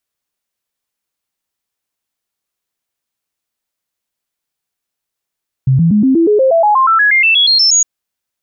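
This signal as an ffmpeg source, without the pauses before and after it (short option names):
-f lavfi -i "aevalsrc='0.473*clip(min(mod(t,0.12),0.12-mod(t,0.12))/0.005,0,1)*sin(2*PI*132*pow(2,floor(t/0.12)/3)*mod(t,0.12))':d=2.16:s=44100"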